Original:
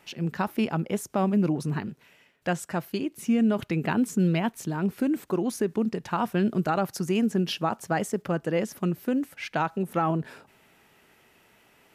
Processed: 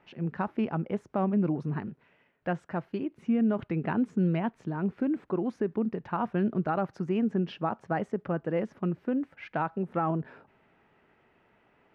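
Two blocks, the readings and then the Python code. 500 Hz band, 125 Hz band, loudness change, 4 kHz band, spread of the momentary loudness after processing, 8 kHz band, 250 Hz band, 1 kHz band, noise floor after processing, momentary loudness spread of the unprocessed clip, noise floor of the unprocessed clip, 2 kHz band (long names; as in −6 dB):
−3.0 dB, −3.0 dB, −3.5 dB, below −10 dB, 8 LU, below −25 dB, −3.0 dB, −3.5 dB, −67 dBFS, 7 LU, −61 dBFS, −6.0 dB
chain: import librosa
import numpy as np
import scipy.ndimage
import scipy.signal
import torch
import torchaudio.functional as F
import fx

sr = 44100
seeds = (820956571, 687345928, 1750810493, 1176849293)

y = scipy.signal.sosfilt(scipy.signal.butter(2, 1800.0, 'lowpass', fs=sr, output='sos'), x)
y = y * librosa.db_to_amplitude(-3.0)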